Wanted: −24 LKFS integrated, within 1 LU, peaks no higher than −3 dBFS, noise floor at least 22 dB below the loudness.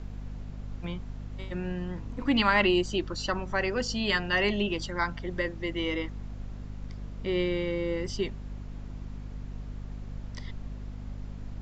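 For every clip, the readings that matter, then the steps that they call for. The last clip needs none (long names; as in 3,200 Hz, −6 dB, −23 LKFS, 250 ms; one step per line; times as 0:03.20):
mains hum 50 Hz; hum harmonics up to 250 Hz; level of the hum −37 dBFS; background noise floor −42 dBFS; target noise floor −52 dBFS; integrated loudness −29.5 LKFS; sample peak −9.5 dBFS; target loudness −24.0 LKFS
→ hum removal 50 Hz, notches 5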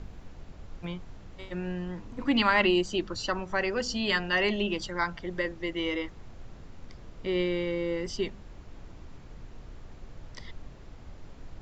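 mains hum none found; background noise floor −48 dBFS; target noise floor −52 dBFS
→ noise reduction from a noise print 6 dB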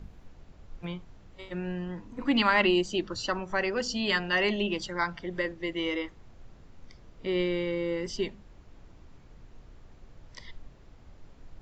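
background noise floor −54 dBFS; integrated loudness −29.5 LKFS; sample peak −9.5 dBFS; target loudness −24.0 LKFS
→ level +5.5 dB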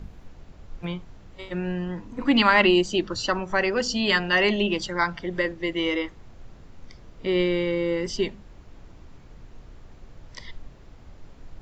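integrated loudness −24.0 LKFS; sample peak −4.0 dBFS; background noise floor −48 dBFS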